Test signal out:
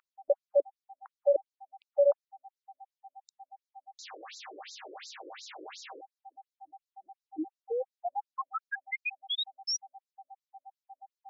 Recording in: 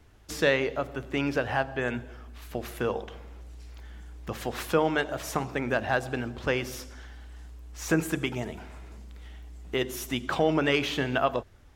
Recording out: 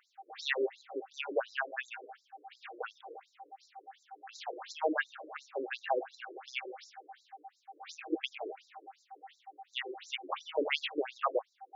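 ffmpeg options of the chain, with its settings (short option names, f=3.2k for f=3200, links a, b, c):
-af "aeval=exprs='val(0)+0.00708*sin(2*PI*780*n/s)':c=same,afftfilt=real='re*between(b*sr/1024,390*pow(5400/390,0.5+0.5*sin(2*PI*2.8*pts/sr))/1.41,390*pow(5400/390,0.5+0.5*sin(2*PI*2.8*pts/sr))*1.41)':imag='im*between(b*sr/1024,390*pow(5400/390,0.5+0.5*sin(2*PI*2.8*pts/sr))/1.41,390*pow(5400/390,0.5+0.5*sin(2*PI*2.8*pts/sr))*1.41)':win_size=1024:overlap=0.75"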